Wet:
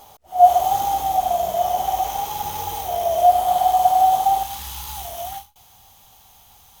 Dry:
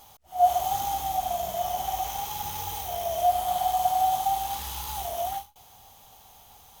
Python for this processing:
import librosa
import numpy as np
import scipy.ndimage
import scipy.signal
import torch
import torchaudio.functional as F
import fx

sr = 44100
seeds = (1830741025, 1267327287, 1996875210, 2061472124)

y = fx.peak_eq(x, sr, hz=500.0, db=fx.steps((0.0, 7.5), (4.43, -5.5)), octaves=1.9)
y = F.gain(torch.from_numpy(y), 3.0).numpy()